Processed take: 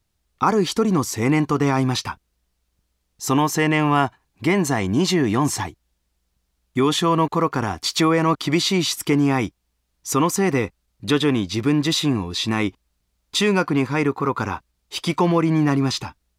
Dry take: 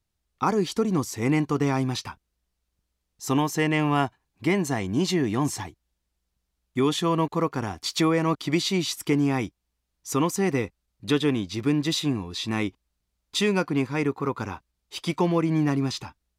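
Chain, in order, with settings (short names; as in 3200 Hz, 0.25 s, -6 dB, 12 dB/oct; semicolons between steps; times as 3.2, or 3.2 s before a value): dynamic EQ 1200 Hz, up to +4 dB, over -38 dBFS, Q 1.1; in parallel at +2 dB: limiter -20.5 dBFS, peak gain reduction 12.5 dB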